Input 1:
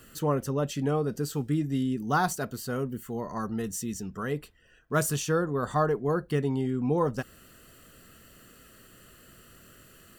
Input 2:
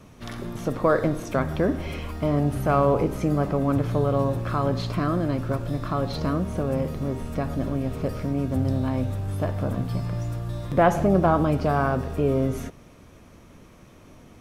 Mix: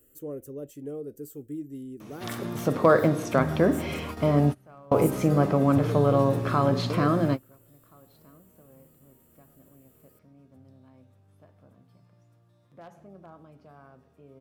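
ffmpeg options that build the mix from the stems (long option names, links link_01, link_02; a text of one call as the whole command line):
ffmpeg -i stem1.wav -i stem2.wav -filter_complex "[0:a]firequalizer=gain_entry='entry(110,0);entry(190,-8);entry(300,7);entry(540,5);entry(870,-14);entry(2100,-7);entry(4500,-11);entry(7600,2);entry(14000,11)':delay=0.05:min_phase=1,volume=-13dB,asplit=2[link_01][link_02];[1:a]highpass=frequency=96:width=0.5412,highpass=frequency=96:width=1.3066,bandreject=frequency=60:width_type=h:width=6,bandreject=frequency=120:width_type=h:width=6,bandreject=frequency=180:width_type=h:width=6,bandreject=frequency=240:width_type=h:width=6,bandreject=frequency=300:width_type=h:width=6,bandreject=frequency=360:width_type=h:width=6,bandreject=frequency=420:width_type=h:width=6,aeval=exprs='0.376*(abs(mod(val(0)/0.376+3,4)-2)-1)':channel_layout=same,adelay=2000,volume=2dB[link_03];[link_02]apad=whole_len=723557[link_04];[link_03][link_04]sidechaingate=range=-31dB:threshold=-56dB:ratio=16:detection=peak[link_05];[link_01][link_05]amix=inputs=2:normalize=0" out.wav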